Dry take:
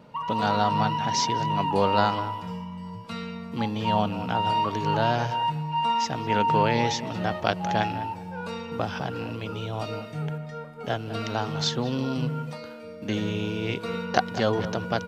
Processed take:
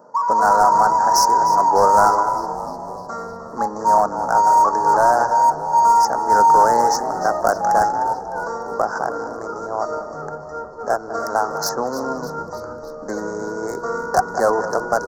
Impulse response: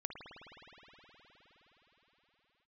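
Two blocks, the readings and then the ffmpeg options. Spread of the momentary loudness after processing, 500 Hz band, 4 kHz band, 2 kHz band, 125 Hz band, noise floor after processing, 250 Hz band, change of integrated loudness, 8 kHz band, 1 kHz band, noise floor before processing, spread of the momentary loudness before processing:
16 LU, +8.0 dB, -1.5 dB, +5.0 dB, -9.5 dB, -34 dBFS, -2.0 dB, +9.5 dB, no reading, +11.5 dB, -40 dBFS, 12 LU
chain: -filter_complex "[0:a]asplit=2[s0][s1];[s1]adynamicsmooth=sensitivity=7.5:basefreq=840,volume=1.41[s2];[s0][s2]amix=inputs=2:normalize=0,aresample=16000,aresample=44100,highpass=580,highshelf=f=5500:g=6.5,volume=4.47,asoftclip=hard,volume=0.224,asuperstop=centerf=2900:order=8:qfactor=0.74,asplit=8[s3][s4][s5][s6][s7][s8][s9][s10];[s4]adelay=303,afreqshift=-80,volume=0.2[s11];[s5]adelay=606,afreqshift=-160,volume=0.122[s12];[s6]adelay=909,afreqshift=-240,volume=0.0741[s13];[s7]adelay=1212,afreqshift=-320,volume=0.0452[s14];[s8]adelay=1515,afreqshift=-400,volume=0.0275[s15];[s9]adelay=1818,afreqshift=-480,volume=0.0168[s16];[s10]adelay=2121,afreqshift=-560,volume=0.0102[s17];[s3][s11][s12][s13][s14][s15][s16][s17]amix=inputs=8:normalize=0,volume=1.78"

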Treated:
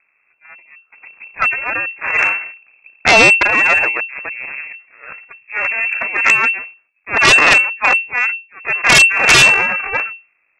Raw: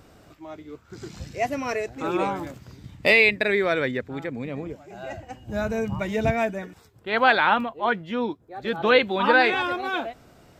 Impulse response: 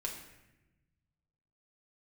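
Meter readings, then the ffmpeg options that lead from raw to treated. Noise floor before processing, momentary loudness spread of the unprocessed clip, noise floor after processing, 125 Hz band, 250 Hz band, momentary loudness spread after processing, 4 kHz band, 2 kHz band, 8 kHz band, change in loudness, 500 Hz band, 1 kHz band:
-54 dBFS, 21 LU, -63 dBFS, +3.0 dB, -1.0 dB, 18 LU, +13.0 dB, +12.5 dB, no reading, +12.0 dB, 0.0 dB, +5.5 dB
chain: -af "aeval=exprs='0.708*(cos(1*acos(clip(val(0)/0.708,-1,1)))-cos(1*PI/2))+0.178*(cos(4*acos(clip(val(0)/0.708,-1,1)))-cos(4*PI/2))+0.00794*(cos(5*acos(clip(val(0)/0.708,-1,1)))-cos(5*PI/2))+0.112*(cos(7*acos(clip(val(0)/0.708,-1,1)))-cos(7*PI/2))+0.0562*(cos(8*acos(clip(val(0)/0.708,-1,1)))-cos(8*PI/2))':c=same,lowpass=f=2300:t=q:w=0.5098,lowpass=f=2300:t=q:w=0.6013,lowpass=f=2300:t=q:w=0.9,lowpass=f=2300:t=q:w=2.563,afreqshift=-2700,aeval=exprs='0.708*sin(PI/2*3.98*val(0)/0.708)':c=same,volume=0.891"

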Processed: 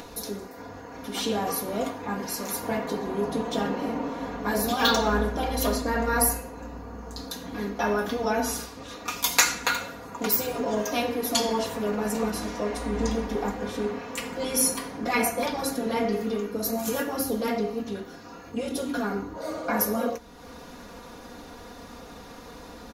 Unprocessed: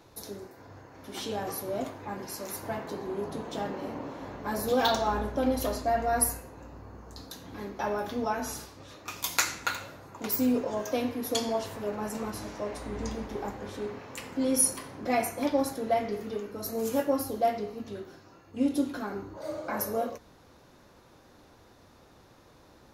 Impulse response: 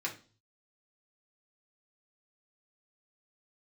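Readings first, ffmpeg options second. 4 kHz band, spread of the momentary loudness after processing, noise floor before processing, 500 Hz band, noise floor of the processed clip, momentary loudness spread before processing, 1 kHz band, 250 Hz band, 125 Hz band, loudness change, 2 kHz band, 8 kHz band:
+7.0 dB, 20 LU, -57 dBFS, +3.0 dB, -44 dBFS, 17 LU, +3.0 dB, +3.0 dB, +5.0 dB, +3.5 dB, +7.0 dB, +4.5 dB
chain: -af "acompressor=mode=upward:threshold=0.00794:ratio=2.5,aecho=1:1:4.2:0.72,afftfilt=real='re*lt(hypot(re,im),0.355)':imag='im*lt(hypot(re,im),0.355)':win_size=1024:overlap=0.75,volume=1.88"

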